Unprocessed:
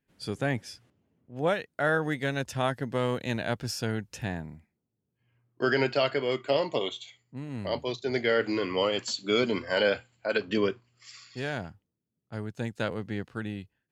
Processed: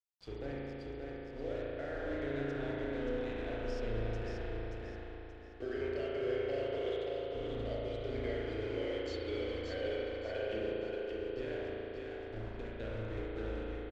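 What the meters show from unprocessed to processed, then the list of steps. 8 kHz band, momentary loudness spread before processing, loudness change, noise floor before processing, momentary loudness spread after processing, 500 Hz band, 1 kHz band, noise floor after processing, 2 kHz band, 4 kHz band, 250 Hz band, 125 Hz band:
under -20 dB, 15 LU, -9.5 dB, -83 dBFS, 8 LU, -7.0 dB, -13.5 dB, -47 dBFS, -13.5 dB, -15.0 dB, -8.5 dB, -8.0 dB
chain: octaver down 2 oct, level -3 dB; high shelf 3200 Hz -6.5 dB; compressor 6:1, threshold -33 dBFS, peak gain reduction 12.5 dB; fixed phaser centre 430 Hz, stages 4; sample gate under -44.5 dBFS; air absorption 140 m; on a send: feedback echo 0.579 s, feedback 35%, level -4 dB; on the sum: spring tank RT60 3.2 s, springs 36 ms, chirp 35 ms, DRR -5.5 dB; gain -5.5 dB

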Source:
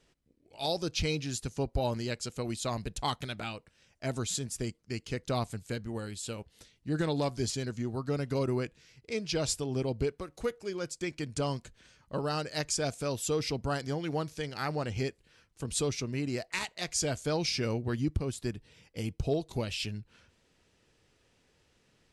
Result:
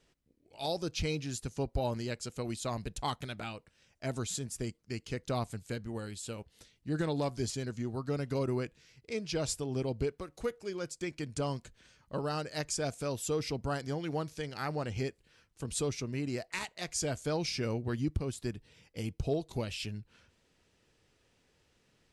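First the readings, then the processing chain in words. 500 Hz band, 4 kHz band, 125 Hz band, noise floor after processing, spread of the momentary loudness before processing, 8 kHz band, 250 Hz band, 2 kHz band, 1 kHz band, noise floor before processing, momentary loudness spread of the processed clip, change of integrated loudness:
-2.0 dB, -4.5 dB, -2.0 dB, -72 dBFS, 8 LU, -3.5 dB, -2.0 dB, -3.0 dB, -2.0 dB, -70 dBFS, 8 LU, -2.5 dB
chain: dynamic EQ 4000 Hz, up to -3 dB, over -44 dBFS, Q 0.8; gain -2 dB

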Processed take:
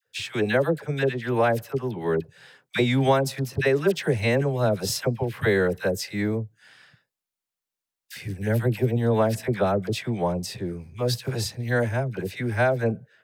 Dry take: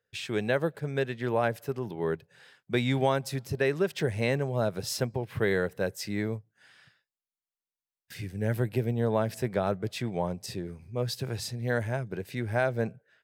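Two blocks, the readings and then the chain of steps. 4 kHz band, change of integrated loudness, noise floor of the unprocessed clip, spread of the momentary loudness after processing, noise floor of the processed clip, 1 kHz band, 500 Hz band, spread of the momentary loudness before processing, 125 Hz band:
+5.5 dB, +5.5 dB, under -85 dBFS, 8 LU, under -85 dBFS, +5.5 dB, +5.5 dB, 8 LU, +5.5 dB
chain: dispersion lows, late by 65 ms, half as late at 920 Hz; gain +5.5 dB

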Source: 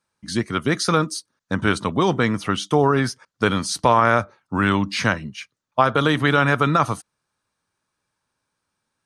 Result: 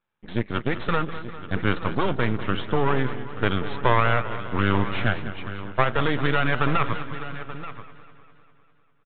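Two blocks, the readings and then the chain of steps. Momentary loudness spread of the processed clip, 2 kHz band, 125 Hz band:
12 LU, -3.5 dB, -2.0 dB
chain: half-wave rectifier; echo 0.881 s -14 dB; downsampling 8000 Hz; warbling echo 0.2 s, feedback 62%, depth 87 cents, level -13 dB

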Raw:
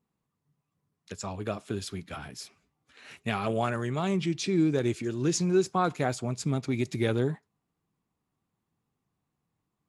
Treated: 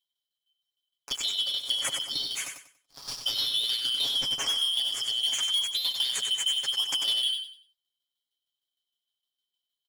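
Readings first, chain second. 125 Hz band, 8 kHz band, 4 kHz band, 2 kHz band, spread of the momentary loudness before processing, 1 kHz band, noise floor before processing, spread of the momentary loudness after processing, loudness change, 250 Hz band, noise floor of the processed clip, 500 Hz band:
under -25 dB, +6.0 dB, +19.5 dB, -2.5 dB, 15 LU, -12.5 dB, -83 dBFS, 9 LU, +3.0 dB, under -25 dB, under -85 dBFS, -21.5 dB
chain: four-band scrambler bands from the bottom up 3412; high shelf 7200 Hz +11 dB; comb 7.2 ms, depth 100%; in parallel at 0 dB: limiter -15.5 dBFS, peak gain reduction 8 dB; on the sum: sample leveller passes 3; compressor, threshold -16 dBFS, peak gain reduction 8.5 dB; tremolo saw down 6.5 Hz, depth 70%; on a send: feedback echo 95 ms, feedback 29%, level -6 dB; on the sum: gain -8.5 dB

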